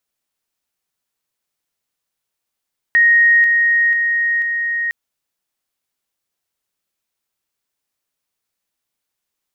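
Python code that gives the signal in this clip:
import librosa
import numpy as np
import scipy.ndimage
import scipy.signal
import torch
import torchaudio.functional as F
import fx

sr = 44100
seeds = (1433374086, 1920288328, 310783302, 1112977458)

y = fx.level_ladder(sr, hz=1870.0, from_db=-8.0, step_db=-3.0, steps=4, dwell_s=0.49, gap_s=0.0)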